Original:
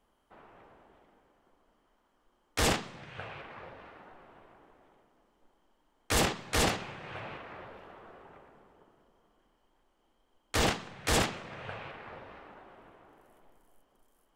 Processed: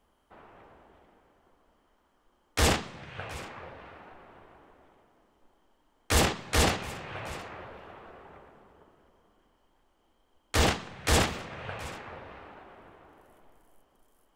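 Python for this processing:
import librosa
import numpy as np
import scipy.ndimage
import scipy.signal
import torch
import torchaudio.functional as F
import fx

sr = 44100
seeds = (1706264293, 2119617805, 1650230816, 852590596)

y = fx.peak_eq(x, sr, hz=75.0, db=8.5, octaves=0.39)
y = y + 10.0 ** (-19.5 / 20.0) * np.pad(y, (int(721 * sr / 1000.0), 0))[:len(y)]
y = F.gain(torch.from_numpy(y), 2.5).numpy()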